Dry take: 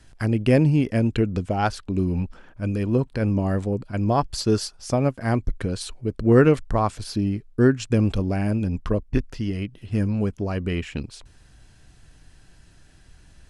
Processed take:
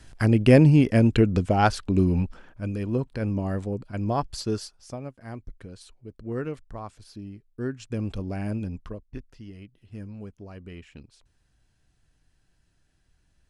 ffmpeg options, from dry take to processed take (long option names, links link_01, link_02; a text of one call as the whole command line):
ffmpeg -i in.wav -af "volume=12.5dB,afade=type=out:start_time=1.99:duration=0.7:silence=0.421697,afade=type=out:start_time=4.29:duration=0.73:silence=0.281838,afade=type=in:start_time=7.5:duration=1.07:silence=0.316228,afade=type=out:start_time=8.57:duration=0.4:silence=0.316228" out.wav